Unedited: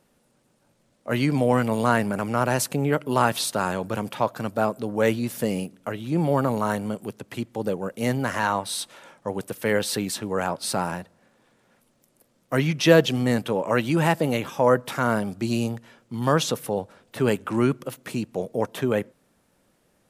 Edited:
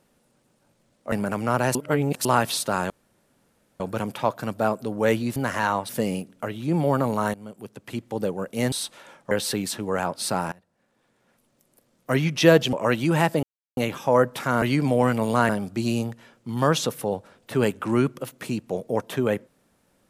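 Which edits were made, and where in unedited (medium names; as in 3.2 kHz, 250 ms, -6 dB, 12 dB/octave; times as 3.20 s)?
1.12–1.99 s: move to 15.14 s
2.62–3.12 s: reverse
3.77 s: insert room tone 0.90 s
6.78–7.50 s: fade in, from -17 dB
8.16–8.69 s: move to 5.33 s
9.28–9.74 s: delete
10.95–12.58 s: fade in equal-power, from -22 dB
13.16–13.59 s: delete
14.29 s: insert silence 0.34 s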